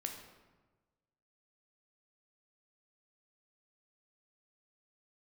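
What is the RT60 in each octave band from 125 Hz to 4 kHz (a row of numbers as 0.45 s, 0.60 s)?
1.6 s, 1.4 s, 1.3 s, 1.2 s, 1.0 s, 0.80 s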